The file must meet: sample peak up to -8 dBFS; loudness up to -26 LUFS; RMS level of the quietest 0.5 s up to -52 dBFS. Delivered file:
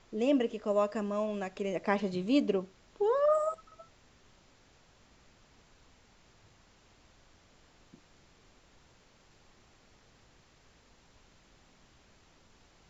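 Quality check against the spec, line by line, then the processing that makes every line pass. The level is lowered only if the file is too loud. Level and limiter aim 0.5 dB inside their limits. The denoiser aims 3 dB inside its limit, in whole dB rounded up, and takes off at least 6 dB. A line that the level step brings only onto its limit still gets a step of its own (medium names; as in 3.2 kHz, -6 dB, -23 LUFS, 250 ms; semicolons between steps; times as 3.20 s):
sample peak -13.5 dBFS: pass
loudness -31.0 LUFS: pass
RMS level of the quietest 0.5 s -63 dBFS: pass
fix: none needed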